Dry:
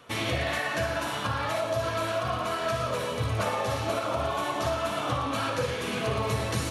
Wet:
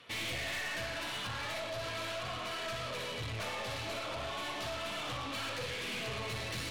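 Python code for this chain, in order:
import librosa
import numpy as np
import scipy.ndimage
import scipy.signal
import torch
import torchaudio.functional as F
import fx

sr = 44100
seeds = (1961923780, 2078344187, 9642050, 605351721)

y = fx.band_shelf(x, sr, hz=3000.0, db=9.0, octaves=1.7)
y = fx.cheby_harmonics(y, sr, harmonics=(4,), levels_db=(-15,), full_scale_db=-12.5)
y = 10.0 ** (-27.5 / 20.0) * np.tanh(y / 10.0 ** (-27.5 / 20.0))
y = F.gain(torch.from_numpy(y), -7.5).numpy()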